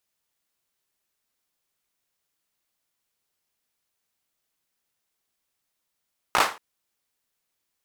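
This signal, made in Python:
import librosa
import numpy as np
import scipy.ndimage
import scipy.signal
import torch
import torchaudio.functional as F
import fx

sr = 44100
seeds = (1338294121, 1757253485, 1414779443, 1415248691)

y = fx.drum_clap(sr, seeds[0], length_s=0.23, bursts=4, spacing_ms=17, hz=1000.0, decay_s=0.3)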